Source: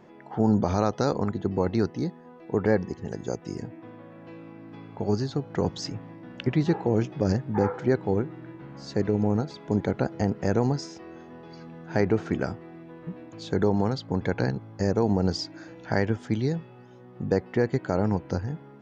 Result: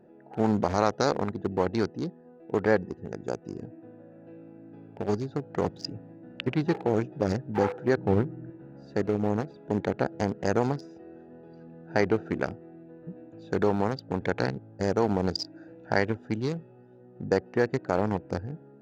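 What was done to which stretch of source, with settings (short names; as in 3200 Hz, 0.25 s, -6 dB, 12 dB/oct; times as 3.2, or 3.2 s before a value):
7.97–8.5 tone controls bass +9 dB, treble -12 dB
whole clip: Wiener smoothing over 41 samples; low shelf 370 Hz -11.5 dB; gain +5 dB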